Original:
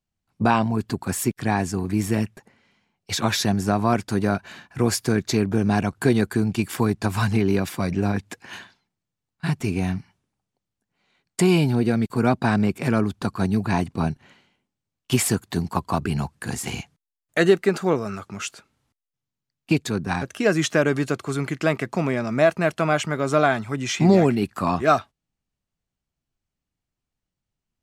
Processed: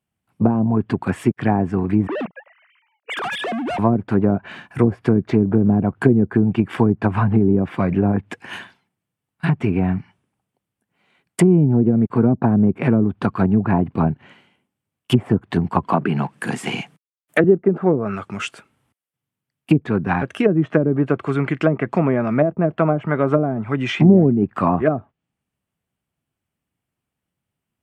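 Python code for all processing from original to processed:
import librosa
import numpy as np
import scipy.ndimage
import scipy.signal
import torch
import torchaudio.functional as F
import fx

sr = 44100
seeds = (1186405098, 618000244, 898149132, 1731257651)

y = fx.chain(x, sr, fx.sine_speech(),
    fx.overload_stage(gain_db=29.0), at=(2.07, 3.79))
y = fx.chain(y, sr, fx.law_mismatch(coded='mu'),
    fx.highpass(hz=150.0, slope=24), at=(15.83, 17.44))
y = fx.env_lowpass_down(y, sr, base_hz=360.0, full_db=-15.0)
y = scipy.signal.sosfilt(scipy.signal.butter(2, 89.0, 'highpass', fs=sr, output='sos'), y)
y = fx.band_shelf(y, sr, hz=5200.0, db=-9.0, octaves=1.1)
y = F.gain(torch.from_numpy(y), 6.0).numpy()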